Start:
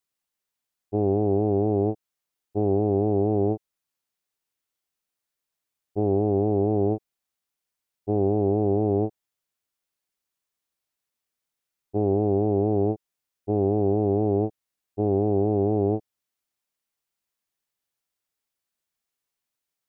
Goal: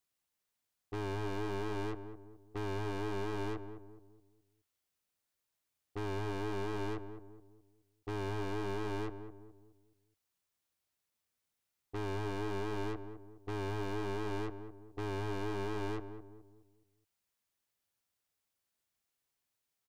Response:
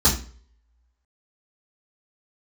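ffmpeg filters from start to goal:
-filter_complex "[0:a]equalizer=frequency=93:width=2.6:gain=6,aeval=exprs='(tanh(100*val(0)+0.75)-tanh(0.75))/100':channel_layout=same,asplit=2[link_01][link_02];[link_02]adelay=209,lowpass=frequency=890:poles=1,volume=-8.5dB,asplit=2[link_03][link_04];[link_04]adelay=209,lowpass=frequency=890:poles=1,volume=0.43,asplit=2[link_05][link_06];[link_06]adelay=209,lowpass=frequency=890:poles=1,volume=0.43,asplit=2[link_07][link_08];[link_08]adelay=209,lowpass=frequency=890:poles=1,volume=0.43,asplit=2[link_09][link_10];[link_10]adelay=209,lowpass=frequency=890:poles=1,volume=0.43[link_11];[link_03][link_05][link_07][link_09][link_11]amix=inputs=5:normalize=0[link_12];[link_01][link_12]amix=inputs=2:normalize=0,volume=3.5dB"

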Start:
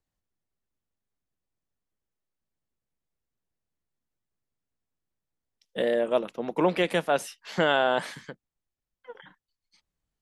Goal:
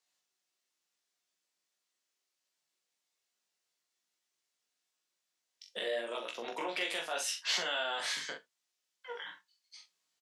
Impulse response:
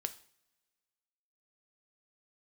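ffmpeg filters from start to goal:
-filter_complex "[0:a]acompressor=threshold=-30dB:ratio=5,flanger=delay=16.5:depth=3.9:speed=0.8,alimiter=level_in=7.5dB:limit=-24dB:level=0:latency=1:release=56,volume=-7.5dB,highpass=120,acrossover=split=300 6800:gain=0.141 1 0.1[link_01][link_02][link_03];[link_01][link_02][link_03]amix=inputs=3:normalize=0[link_04];[1:a]atrim=start_sample=2205,afade=type=out:start_time=0.22:duration=0.01,atrim=end_sample=10143,asetrate=83790,aresample=44100[link_05];[link_04][link_05]afir=irnorm=-1:irlink=0,crystalizer=i=9.5:c=0,asplit=2[link_06][link_07];[link_07]adelay=42,volume=-6dB[link_08];[link_06][link_08]amix=inputs=2:normalize=0,volume=6.5dB"

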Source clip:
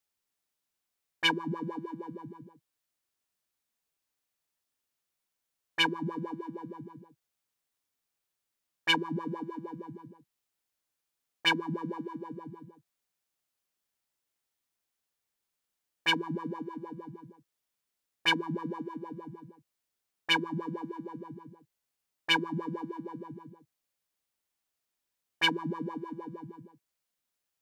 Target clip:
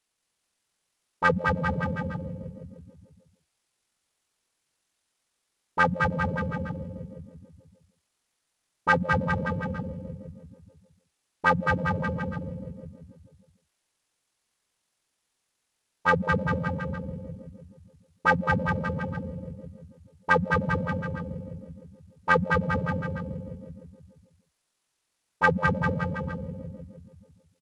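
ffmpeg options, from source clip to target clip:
ffmpeg -i in.wav -af "acontrast=41,aecho=1:1:210|399|569.1|722.2|860:0.631|0.398|0.251|0.158|0.1,asetrate=23361,aresample=44100,atempo=1.88775" out.wav

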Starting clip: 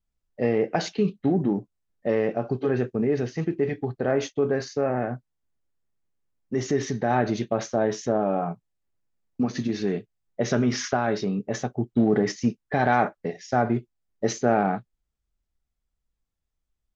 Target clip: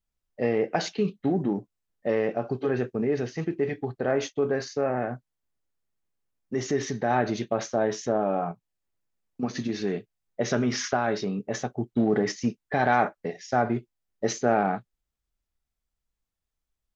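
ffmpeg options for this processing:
ffmpeg -i in.wav -filter_complex "[0:a]lowshelf=frequency=340:gain=-4.5,asettb=1/sr,asplit=3[link_01][link_02][link_03];[link_01]atrim=end=8.514[link_04];[link_02]atrim=start=8.51:end=9.43,asetpts=PTS-STARTPTS,afade=type=in:duration=0.004:curve=qsin,afade=type=out:start_time=0.916:duration=0.004:curve=qsin,acompressor=threshold=-45dB:ratio=1.5[link_05];[link_03]atrim=start=9.426[link_06];[link_04][link_05]acrossfade=duration=0.004:curve1=hsin:curve2=qsin[link_07];[link_07][link_06]acrossfade=duration=0.004:curve1=qsin:curve2=hsin" out.wav

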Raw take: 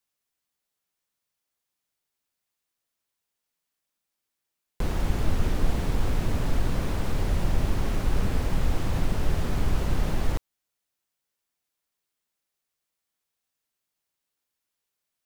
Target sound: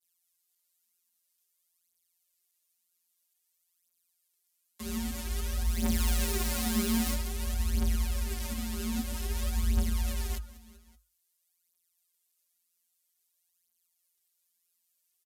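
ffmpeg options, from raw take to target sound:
ffmpeg -i in.wav -filter_complex "[0:a]acrossover=split=260|3900[link_01][link_02][link_03];[link_01]acompressor=threshold=-23dB:ratio=4[link_04];[link_02]acompressor=threshold=-39dB:ratio=4[link_05];[link_03]acompressor=threshold=-52dB:ratio=4[link_06];[link_04][link_05][link_06]amix=inputs=3:normalize=0,crystalizer=i=7:c=0,agate=range=-33dB:threshold=-54dB:ratio=3:detection=peak,asplit=2[link_07][link_08];[link_08]aecho=0:1:191|382|573:0.0841|0.0379|0.017[link_09];[link_07][link_09]amix=inputs=2:normalize=0,aresample=32000,aresample=44100,asettb=1/sr,asplit=3[link_10][link_11][link_12];[link_10]atrim=end=5.664[link_13];[link_11]atrim=start=5.66:end=7.15,asetpts=PTS-STARTPTS,afade=type=in:duration=0.004:curve=qsin,afade=type=out:start_time=1.486:duration=0.004:curve=qsin,aeval=exprs='0.0501*(abs(mod(val(0)/0.0501+3,4)-2)-1)':channel_layout=same[link_14];[link_12]atrim=start=7.146[link_15];[link_13][link_14]acrossfade=duration=0.004:curve1=hsin:curve2=qsin[link_16];[link_16][link_15]acrossfade=duration=0.004:curve1=qsin:curve2=hsin,alimiter=level_in=3dB:limit=-24dB:level=0:latency=1:release=454,volume=-3dB,afftfilt=real='hypot(re,im)*cos(PI*b)':imag='0':win_size=1024:overlap=0.75,adynamicequalizer=threshold=0.002:dfrequency=180:dqfactor=2.3:tfrequency=180:tqfactor=2.3:attack=5:release=100:ratio=0.375:range=2.5:mode=boostabove:tftype=bell,afreqshift=52,bandreject=frequency=89.58:width_type=h:width=4,bandreject=frequency=179.16:width_type=h:width=4,bandreject=frequency=268.74:width_type=h:width=4,bandreject=frequency=358.32:width_type=h:width=4,bandreject=frequency=447.9:width_type=h:width=4,bandreject=frequency=537.48:width_type=h:width=4,bandreject=frequency=627.06:width_type=h:width=4,bandreject=frequency=716.64:width_type=h:width=4,bandreject=frequency=806.22:width_type=h:width=4,bandreject=frequency=895.8:width_type=h:width=4,bandreject=frequency=985.38:width_type=h:width=4,bandreject=frequency=1074.96:width_type=h:width=4,bandreject=frequency=1164.54:width_type=h:width=4,bandreject=frequency=1254.12:width_type=h:width=4,bandreject=frequency=1343.7:width_type=h:width=4,bandreject=frequency=1433.28:width_type=h:width=4,bandreject=frequency=1522.86:width_type=h:width=4,bandreject=frequency=1612.44:width_type=h:width=4,bandreject=frequency=1702.02:width_type=h:width=4,bandreject=frequency=1791.6:width_type=h:width=4,bandreject=frequency=1881.18:width_type=h:width=4,bandreject=frequency=1970.76:width_type=h:width=4,bandreject=frequency=2060.34:width_type=h:width=4,bandreject=frequency=2149.92:width_type=h:width=4,bandreject=frequency=2239.5:width_type=h:width=4,bandreject=frequency=2329.08:width_type=h:width=4,aphaser=in_gain=1:out_gain=1:delay=5:decay=0.67:speed=0.51:type=triangular,volume=2.5dB" out.wav

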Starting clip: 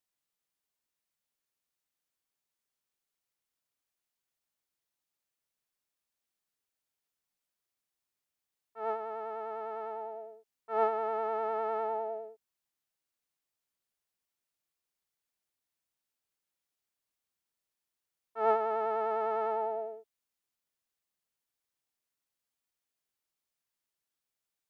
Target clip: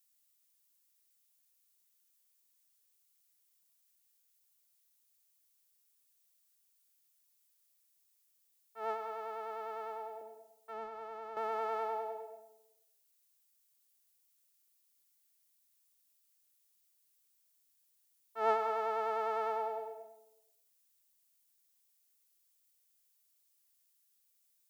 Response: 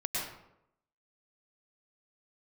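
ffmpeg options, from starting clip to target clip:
-filter_complex "[0:a]asettb=1/sr,asplit=3[link_01][link_02][link_03];[link_01]atrim=end=10.214[link_04];[link_02]atrim=start=10.21:end=11.37,asetpts=PTS-STARTPTS,afade=type=in:duration=0.004:curve=qsin,afade=type=out:start_time=1.156:duration=0.004:curve=qsin,acrossover=split=200[link_05][link_06];[link_06]acompressor=threshold=-43dB:ratio=3[link_07];[link_05][link_07]amix=inputs=2:normalize=0[link_08];[link_03]atrim=start=11.366[link_09];[link_04][link_08]acrossfade=duration=0.004:curve1=hsin:curve2=qsin[link_10];[link_10][link_09]acrossfade=duration=0.004:curve1=qsin:curve2=hsin,crystalizer=i=6:c=0,asplit=2[link_11][link_12];[1:a]atrim=start_sample=2205[link_13];[link_12][link_13]afir=irnorm=-1:irlink=0,volume=-11dB[link_14];[link_11][link_14]amix=inputs=2:normalize=0,volume=-7dB"

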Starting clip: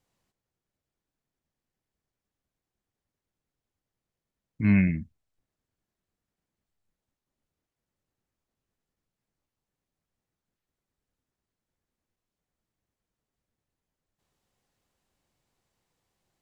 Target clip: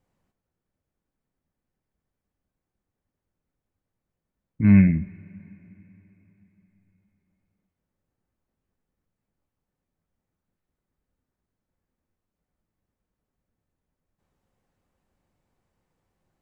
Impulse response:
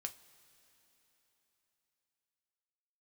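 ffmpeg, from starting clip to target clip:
-filter_complex "[0:a]lowshelf=frequency=350:gain=4,asplit=2[link_01][link_02];[1:a]atrim=start_sample=2205,lowpass=2400[link_03];[link_02][link_03]afir=irnorm=-1:irlink=0,volume=6dB[link_04];[link_01][link_04]amix=inputs=2:normalize=0,volume=-5dB"

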